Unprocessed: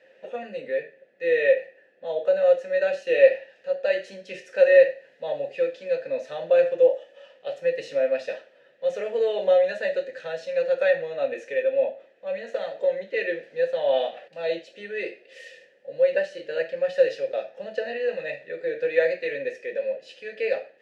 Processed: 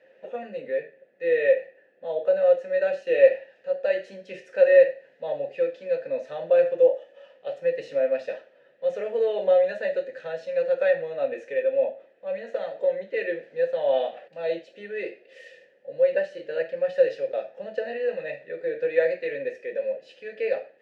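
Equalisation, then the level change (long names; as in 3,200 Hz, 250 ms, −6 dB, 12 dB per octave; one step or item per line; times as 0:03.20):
high-shelf EQ 2,700 Hz −9.5 dB
0.0 dB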